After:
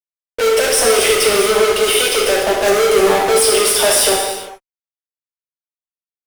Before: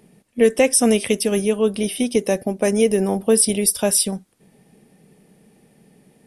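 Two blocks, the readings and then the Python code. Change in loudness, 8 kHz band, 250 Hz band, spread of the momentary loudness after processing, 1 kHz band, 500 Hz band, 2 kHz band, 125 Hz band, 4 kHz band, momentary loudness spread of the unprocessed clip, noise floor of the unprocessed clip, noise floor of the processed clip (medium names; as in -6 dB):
+5.5 dB, +4.5 dB, -6.0 dB, 6 LU, +12.5 dB, +6.0 dB, +11.5 dB, -6.0 dB, +12.5 dB, 7 LU, -59 dBFS, under -85 dBFS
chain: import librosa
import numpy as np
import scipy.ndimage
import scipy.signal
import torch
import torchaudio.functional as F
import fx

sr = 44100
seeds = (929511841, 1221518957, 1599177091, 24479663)

y = scipy.signal.sosfilt(scipy.signal.ellip(4, 1.0, 40, 420.0, 'highpass', fs=sr, output='sos'), x)
y = fx.high_shelf(y, sr, hz=6600.0, db=-10.0)
y = fx.fuzz(y, sr, gain_db=42.0, gate_db=-45.0)
y = fx.rev_gated(y, sr, seeds[0], gate_ms=440, shape='falling', drr_db=-2.0)
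y = y * 10.0 ** (-2.0 / 20.0)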